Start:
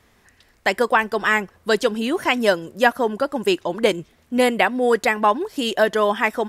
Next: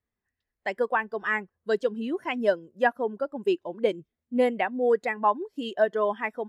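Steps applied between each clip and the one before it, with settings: spectral expander 1.5:1; gain -7 dB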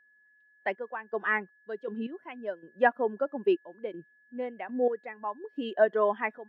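step gate "xxxx..xx..x...x" 80 bpm -12 dB; three-band isolator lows -21 dB, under 160 Hz, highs -22 dB, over 3100 Hz; whine 1700 Hz -61 dBFS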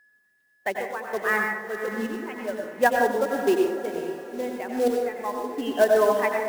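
short-mantissa float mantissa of 2-bit; diffused feedback echo 0.497 s, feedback 46%, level -11 dB; on a send at -2 dB: reverb RT60 0.70 s, pre-delay 83 ms; on the sum: gain +3 dB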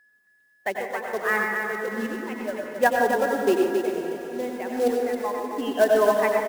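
echo 0.27 s -6 dB

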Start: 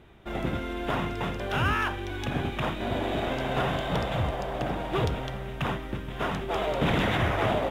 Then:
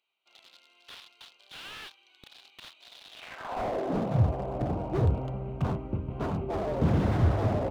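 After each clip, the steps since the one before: Wiener smoothing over 25 samples; high-pass sweep 3700 Hz -> 78 Hz, 3.1–4.31; slew limiter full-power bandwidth 24 Hz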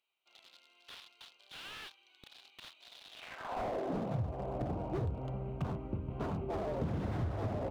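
compressor 6:1, threshold -28 dBFS, peak gain reduction 10 dB; gain -4 dB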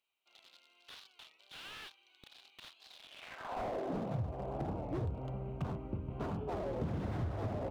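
record warp 33 1/3 rpm, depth 160 cents; gain -1.5 dB

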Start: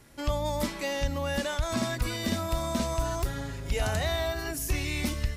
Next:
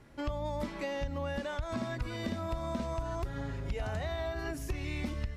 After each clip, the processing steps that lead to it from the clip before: high shelf 8600 Hz -10 dB; compressor, threshold -31 dBFS, peak gain reduction 9 dB; high shelf 3100 Hz -10 dB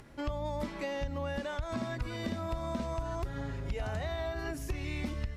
upward compressor, threshold -49 dBFS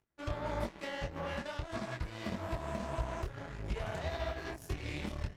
notch comb 260 Hz; added harmonics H 7 -17 dB, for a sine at -23 dBFS; detuned doubles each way 57 cents; gain +3.5 dB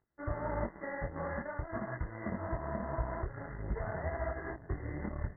brick-wall FIR low-pass 2100 Hz; gain +1 dB

